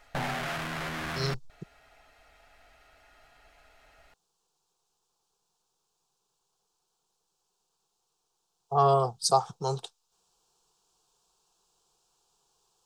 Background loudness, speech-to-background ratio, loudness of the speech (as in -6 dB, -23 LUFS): -34.5 LUFS, 7.0 dB, -27.5 LUFS